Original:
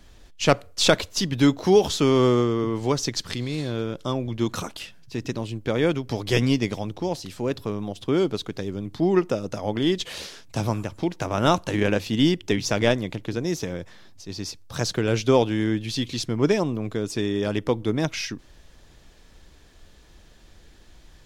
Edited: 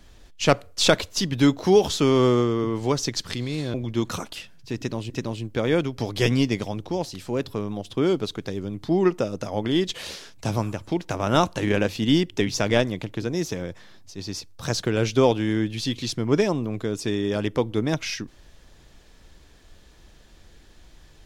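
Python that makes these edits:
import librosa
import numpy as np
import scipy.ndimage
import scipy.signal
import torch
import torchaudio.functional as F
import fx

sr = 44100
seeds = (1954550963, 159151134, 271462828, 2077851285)

y = fx.edit(x, sr, fx.cut(start_s=3.74, length_s=0.44),
    fx.repeat(start_s=5.21, length_s=0.33, count=2), tone=tone)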